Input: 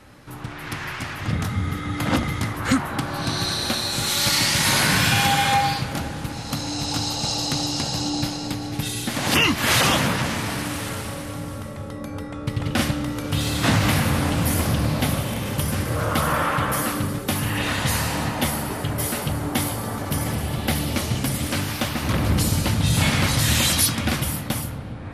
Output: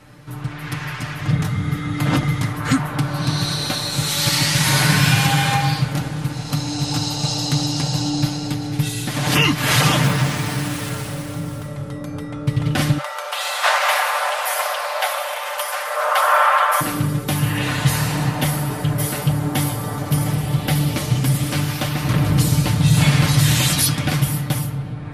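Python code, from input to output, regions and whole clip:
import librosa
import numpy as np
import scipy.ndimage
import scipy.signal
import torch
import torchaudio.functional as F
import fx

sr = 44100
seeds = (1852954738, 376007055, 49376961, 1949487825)

y = fx.chain(x, sr, fx.median_filter(points=3),
    fx.high_shelf(hz=7000.0, db=5.5), at=(10.03, 11.67))
y = fx.chain(y, sr, fx.steep_highpass(hz=530.0, slope=72),
    fx.peak_eq(hz=1100.0, db=8.0, octaves=2.5), at=(12.98, 16.81))
y = fx.peak_eq(y, sr, hz=140.0, db=8.5, octaves=0.46)
y = y + 0.53 * np.pad(y, (int(6.7 * sr / 1000.0), 0))[:len(y)]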